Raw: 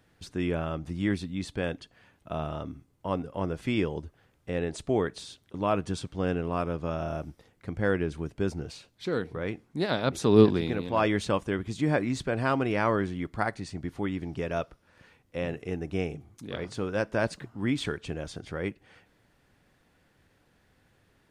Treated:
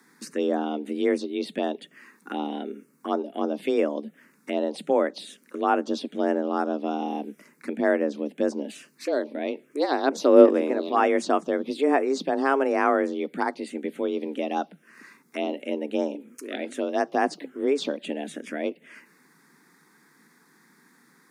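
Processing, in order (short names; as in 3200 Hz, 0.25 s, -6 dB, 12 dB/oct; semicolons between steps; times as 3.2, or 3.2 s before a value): envelope phaser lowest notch 470 Hz, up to 4000 Hz, full sweep at -22 dBFS; frequency shift +140 Hz; mismatched tape noise reduction encoder only; gain +4.5 dB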